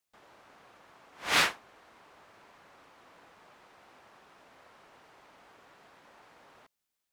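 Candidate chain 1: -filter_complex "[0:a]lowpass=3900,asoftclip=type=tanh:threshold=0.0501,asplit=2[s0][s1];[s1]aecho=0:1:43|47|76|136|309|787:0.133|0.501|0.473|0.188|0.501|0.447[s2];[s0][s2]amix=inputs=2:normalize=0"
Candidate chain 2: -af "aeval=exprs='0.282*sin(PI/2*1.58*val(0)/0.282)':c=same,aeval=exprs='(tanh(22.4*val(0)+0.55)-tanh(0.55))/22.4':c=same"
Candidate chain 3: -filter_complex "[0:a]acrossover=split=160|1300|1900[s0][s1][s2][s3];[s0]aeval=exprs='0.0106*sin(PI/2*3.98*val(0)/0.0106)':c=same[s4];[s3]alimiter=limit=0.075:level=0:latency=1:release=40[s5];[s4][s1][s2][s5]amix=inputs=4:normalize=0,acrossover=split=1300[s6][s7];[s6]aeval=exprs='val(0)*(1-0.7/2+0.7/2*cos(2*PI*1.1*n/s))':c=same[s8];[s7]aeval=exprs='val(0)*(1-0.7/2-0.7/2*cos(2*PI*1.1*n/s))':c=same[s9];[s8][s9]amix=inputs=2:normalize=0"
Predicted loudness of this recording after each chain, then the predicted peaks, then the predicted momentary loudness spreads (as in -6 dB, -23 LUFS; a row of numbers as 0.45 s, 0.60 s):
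-33.5 LUFS, -31.5 LUFS, -31.0 LUFS; -20.0 dBFS, -23.5 dBFS, -17.0 dBFS; 13 LU, 18 LU, 9 LU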